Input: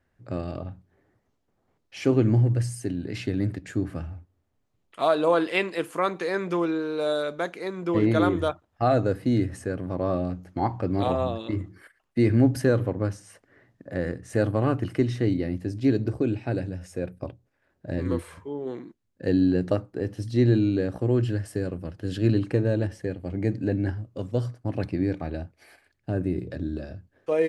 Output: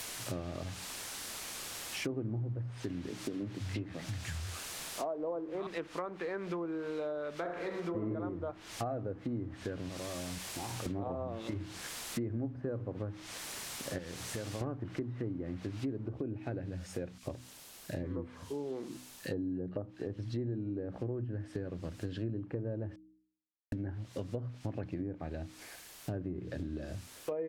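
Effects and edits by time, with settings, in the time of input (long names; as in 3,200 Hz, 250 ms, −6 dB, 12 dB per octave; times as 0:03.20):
0:00.63–0:01.09: gain on a spectral selection 1,500–4,000 Hz +12 dB
0:03.09–0:05.67: three-band delay without the direct sound mids, lows, highs 330/590 ms, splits 150/1,100 Hz
0:07.35–0:08.09: thrown reverb, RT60 0.83 s, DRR −1 dB
0:09.89–0:10.86: output level in coarse steps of 20 dB
0:13.98–0:14.61: downward compressor 2 to 1, threshold −42 dBFS
0:16.09: noise floor change −41 dB −52 dB
0:17.18–0:20.18: multiband delay without the direct sound highs, lows 50 ms, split 1,700 Hz
0:22.96–0:23.72: silence
whole clip: treble cut that deepens with the level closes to 1,100 Hz, closed at −20.5 dBFS; hum removal 62.78 Hz, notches 5; downward compressor 5 to 1, threshold −37 dBFS; level +1 dB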